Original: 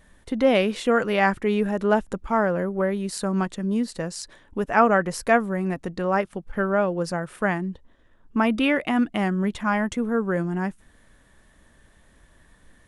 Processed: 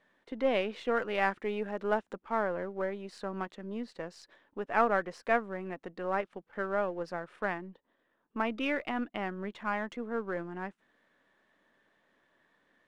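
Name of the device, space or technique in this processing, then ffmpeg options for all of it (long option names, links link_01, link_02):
crystal radio: -filter_complex "[0:a]highpass=300,lowpass=3400,aeval=exprs='if(lt(val(0),0),0.708*val(0),val(0))':channel_layout=same,asettb=1/sr,asplit=3[link_01][link_02][link_03];[link_01]atrim=end=0.984[link_04];[link_02]atrim=start=0.98:end=2.17,asetpts=PTS-STARTPTS,afade=type=in:duration=0.004:curve=qsin,afade=type=out:start_time=1.186:duration=0.004:curve=qsin,highshelf=frequency=5600:gain=4.5[link_05];[link_03]atrim=start=2.166[link_06];[link_04][link_05]acrossfade=duration=0.004:curve1=hsin:curve2=qsin[link_07];[link_07][link_06]acrossfade=duration=0.004:curve1=qsin:curve2=hsin,volume=-7.5dB"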